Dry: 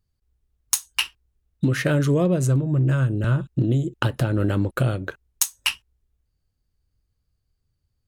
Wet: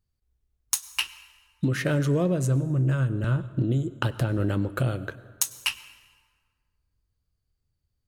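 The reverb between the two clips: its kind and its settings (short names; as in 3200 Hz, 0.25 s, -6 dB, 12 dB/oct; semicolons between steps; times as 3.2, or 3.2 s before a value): plate-style reverb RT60 1.7 s, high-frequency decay 0.65×, pre-delay 85 ms, DRR 16.5 dB; gain -4 dB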